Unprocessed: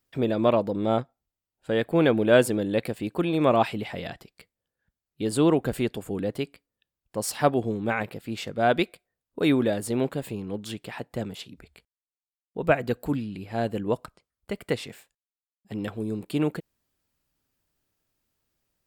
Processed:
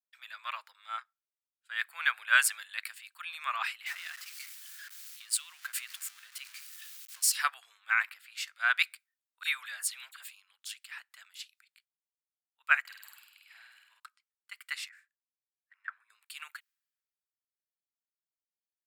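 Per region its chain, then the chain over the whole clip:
3.86–7.32 zero-crossing step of -35.5 dBFS + compressor 3:1, threshold -27 dBFS
9.43–10.25 de-hum 201.4 Hz, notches 4 + dispersion lows, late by 40 ms, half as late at 2100 Hz
12.8–14 compressor 3:1, threshold -37 dBFS + flutter echo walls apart 8.5 m, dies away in 1.4 s
14.89–16.1 band-pass 3000 Hz, Q 0.75 + resonant high shelf 2300 Hz -10.5 dB, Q 3
whole clip: steep high-pass 1300 Hz 36 dB/oct; dynamic EQ 3400 Hz, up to -5 dB, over -51 dBFS, Q 3.3; three-band expander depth 70%

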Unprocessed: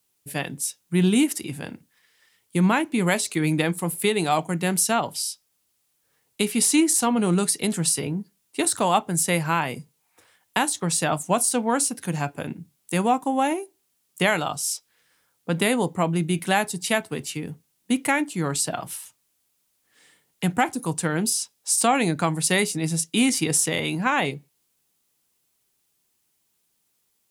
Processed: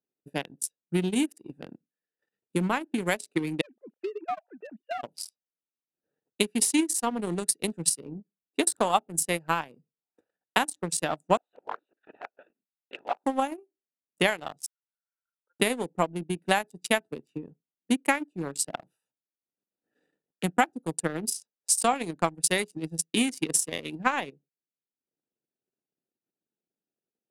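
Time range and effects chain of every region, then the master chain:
3.61–5.03 sine-wave speech + compressor 4:1, threshold -20 dBFS + HPF 700 Hz 6 dB/oct
11.37–13.24 LPC vocoder at 8 kHz whisper + HPF 1000 Hz
14.66–15.6 Butterworth band-pass 1300 Hz, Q 3.3 + comb 2.1 ms, depth 88% + auto swell 0.611 s
whole clip: Wiener smoothing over 41 samples; HPF 230 Hz 12 dB/oct; transient shaper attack +8 dB, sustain -12 dB; gain -6 dB

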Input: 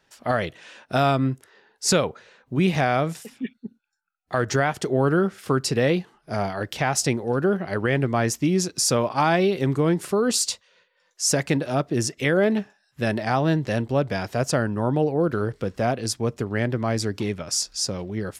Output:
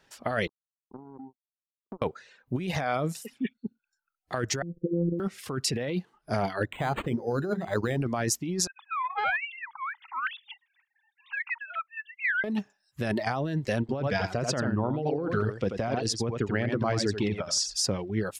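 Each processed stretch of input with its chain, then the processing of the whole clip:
0.47–2.02 Chebyshev band-pass 190–400 Hz, order 3 + compressor, threshold -34 dBFS + power-law curve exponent 3
4.62–5.2 steep low-pass 510 Hz 96 dB/oct + robotiser 171 Hz
6.65–8.02 high shelf 3600 Hz -8 dB + notches 50/100/150/200/250/300/350/400/450 Hz + decimation joined by straight lines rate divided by 8×
8.67–12.44 sine-wave speech + steep high-pass 820 Hz 96 dB/oct + Doppler distortion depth 0.14 ms
13.8–17.74 LPF 5800 Hz + echo 86 ms -4.5 dB
whole clip: reverb removal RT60 0.82 s; negative-ratio compressor -26 dBFS, ratio -1; gain -1.5 dB

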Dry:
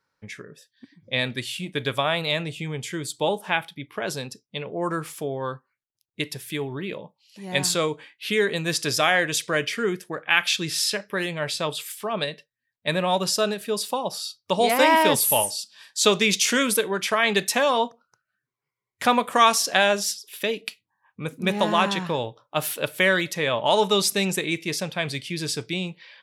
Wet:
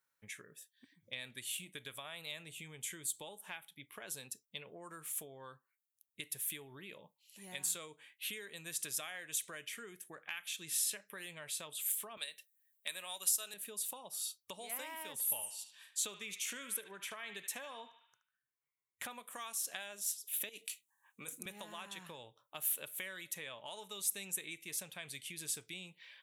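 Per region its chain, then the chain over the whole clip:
12.17–13.54 HPF 180 Hz + tilt +3.5 dB/oct
15.12–19.11 high shelf 5200 Hz -8.5 dB + narrowing echo 74 ms, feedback 47%, band-pass 2100 Hz, level -9 dB
20.49–21.46 HPF 220 Hz + bell 7000 Hz +10 dB 1.5 oct + negative-ratio compressor -32 dBFS
whole clip: bell 4900 Hz -13.5 dB 0.58 oct; compressor 5:1, threshold -34 dBFS; pre-emphasis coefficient 0.9; gain +2.5 dB

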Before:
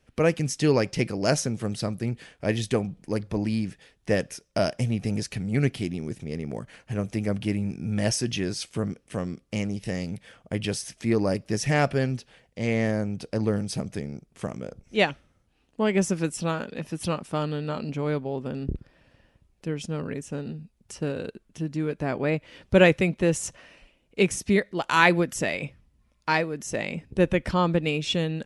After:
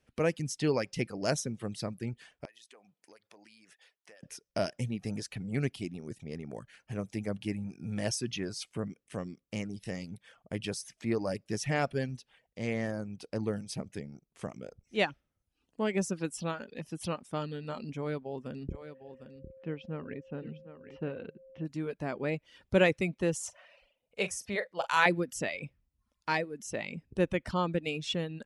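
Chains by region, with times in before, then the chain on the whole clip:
2.45–4.23 Bessel high-pass 810 Hz + compressor 8:1, threshold -46 dBFS
18.7–21.64 LPF 2900 Hz 24 dB/oct + whine 530 Hz -44 dBFS + echo 0.755 s -11 dB
23.35–25.06 resonant low shelf 430 Hz -7 dB, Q 3 + doubler 44 ms -9 dB
whole clip: reverb removal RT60 0.62 s; low shelf 62 Hz -7 dB; gain -6.5 dB

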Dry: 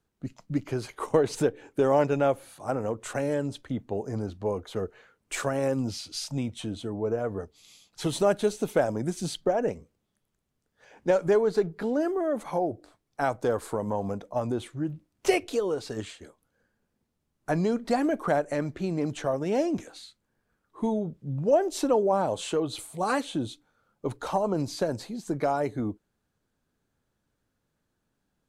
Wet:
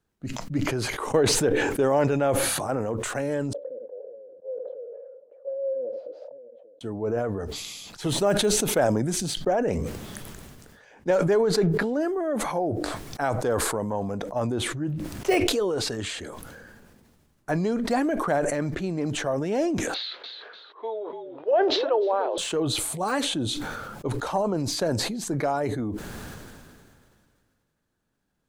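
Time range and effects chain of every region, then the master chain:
3.53–6.81 Butterworth band-pass 530 Hz, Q 7.6 + echo 73 ms -20 dB
19.94–22.38 elliptic band-pass 430–3800 Hz + frequency-shifting echo 0.295 s, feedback 34%, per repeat -52 Hz, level -12 dB
whole clip: de-esser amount 85%; bell 1700 Hz +2.5 dB 0.34 oct; sustainer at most 26 dB/s

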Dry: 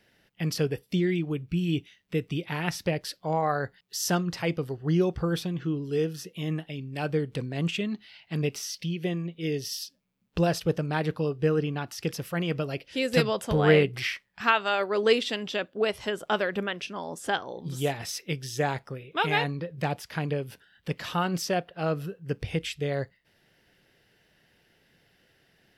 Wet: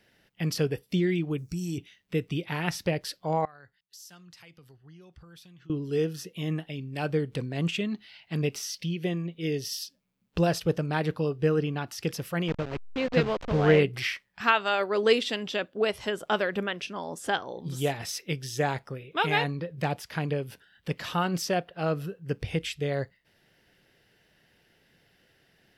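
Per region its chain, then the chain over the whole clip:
1.38–1.78 compressor 2:1, threshold -33 dBFS + resonant high shelf 4300 Hz +12 dB, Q 3
3.45–5.7 passive tone stack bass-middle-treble 5-5-5 + compressor 5:1, threshold -48 dBFS + three-band expander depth 40%
12.48–13.79 level-crossing sampler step -29 dBFS + air absorption 190 m
whole clip: dry

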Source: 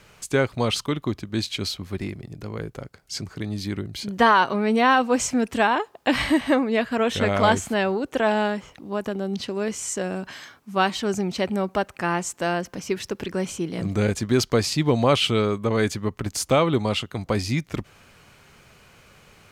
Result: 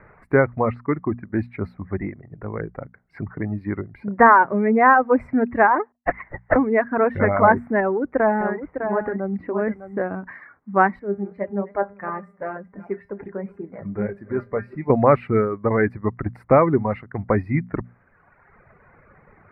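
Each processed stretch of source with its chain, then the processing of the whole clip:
0.71–1.39 brick-wall FIR low-pass 8500 Hz + tone controls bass -2 dB, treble -9 dB
5.92–6.56 HPF 470 Hz 24 dB/oct + LPC vocoder at 8 kHz whisper + upward expander 2.5:1, over -40 dBFS
7.8–10.06 de-esser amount 100% + echo 0.605 s -7 dB
10.99–14.9 regenerating reverse delay 0.188 s, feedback 52%, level -11 dB + bell 530 Hz +4.5 dB 0.71 oct + resonator 200 Hz, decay 0.32 s, mix 80%
whole clip: elliptic low-pass 2000 Hz, stop band 40 dB; reverb removal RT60 1.5 s; notches 60/120/180/240 Hz; gain +5.5 dB

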